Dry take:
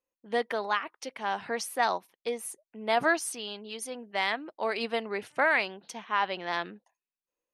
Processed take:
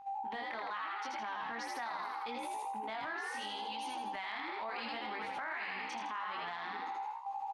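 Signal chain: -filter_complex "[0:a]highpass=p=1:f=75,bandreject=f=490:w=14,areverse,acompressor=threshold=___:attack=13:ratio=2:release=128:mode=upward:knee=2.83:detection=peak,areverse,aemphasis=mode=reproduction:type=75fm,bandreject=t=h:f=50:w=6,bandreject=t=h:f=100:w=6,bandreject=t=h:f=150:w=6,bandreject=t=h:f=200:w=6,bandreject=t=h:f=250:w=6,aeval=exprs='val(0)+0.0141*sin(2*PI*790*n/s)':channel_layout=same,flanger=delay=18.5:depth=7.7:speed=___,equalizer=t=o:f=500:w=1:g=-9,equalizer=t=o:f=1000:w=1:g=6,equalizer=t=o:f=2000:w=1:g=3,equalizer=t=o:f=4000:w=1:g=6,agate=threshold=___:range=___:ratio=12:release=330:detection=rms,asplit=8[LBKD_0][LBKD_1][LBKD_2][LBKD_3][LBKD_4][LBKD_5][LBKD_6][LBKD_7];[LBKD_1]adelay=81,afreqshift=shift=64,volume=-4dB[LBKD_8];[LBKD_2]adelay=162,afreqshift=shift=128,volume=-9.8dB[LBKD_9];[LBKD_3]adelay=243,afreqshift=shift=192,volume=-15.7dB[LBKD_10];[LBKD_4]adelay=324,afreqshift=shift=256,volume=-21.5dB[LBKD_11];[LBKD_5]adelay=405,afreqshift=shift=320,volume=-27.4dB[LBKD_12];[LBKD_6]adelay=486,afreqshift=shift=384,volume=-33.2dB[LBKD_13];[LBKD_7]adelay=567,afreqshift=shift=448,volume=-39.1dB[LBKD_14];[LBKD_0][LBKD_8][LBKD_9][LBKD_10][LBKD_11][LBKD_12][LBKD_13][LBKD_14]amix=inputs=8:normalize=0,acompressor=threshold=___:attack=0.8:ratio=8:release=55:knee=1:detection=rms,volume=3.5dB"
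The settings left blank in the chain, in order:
-38dB, 0.77, -41dB, -12dB, -39dB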